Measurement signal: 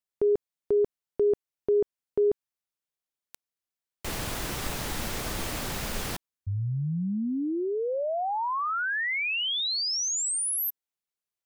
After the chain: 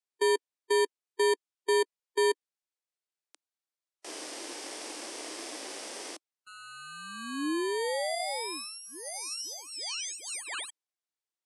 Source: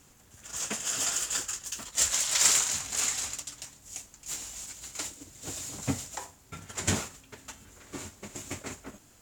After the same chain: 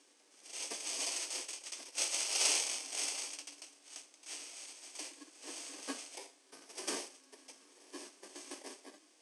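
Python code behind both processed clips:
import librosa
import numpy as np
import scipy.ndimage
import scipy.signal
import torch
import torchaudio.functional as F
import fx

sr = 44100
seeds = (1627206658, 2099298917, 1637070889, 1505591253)

y = fx.bit_reversed(x, sr, seeds[0], block=32)
y = fx.hpss(y, sr, part='percussive', gain_db=-6)
y = scipy.signal.sosfilt(scipy.signal.ellip(4, 1.0, 80, [300.0, 9300.0], 'bandpass', fs=sr, output='sos'), y)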